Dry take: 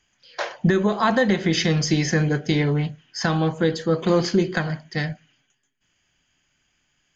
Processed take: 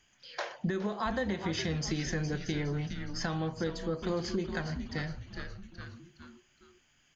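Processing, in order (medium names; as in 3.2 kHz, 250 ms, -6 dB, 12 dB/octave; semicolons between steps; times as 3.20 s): on a send: frequency-shifting echo 413 ms, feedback 37%, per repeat -130 Hz, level -10 dB; on the sum: compression 2:1, threshold -41 dBFS, peak gain reduction 14.5 dB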